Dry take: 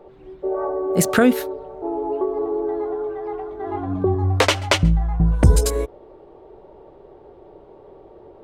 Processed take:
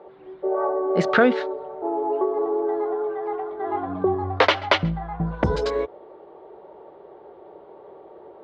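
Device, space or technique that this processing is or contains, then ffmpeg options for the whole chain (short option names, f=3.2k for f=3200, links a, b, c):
overdrive pedal into a guitar cabinet: -filter_complex "[0:a]asplit=2[a][b];[b]highpass=f=720:p=1,volume=9dB,asoftclip=type=tanh:threshold=-2dB[c];[a][c]amix=inputs=2:normalize=0,lowpass=f=2.3k:p=1,volume=-6dB,highpass=100,equalizer=f=110:t=q:w=4:g=-8,equalizer=f=270:t=q:w=4:g=-4,equalizer=f=2.6k:t=q:w=4:g=-4,lowpass=f=4.5k:w=0.5412,lowpass=f=4.5k:w=1.3066"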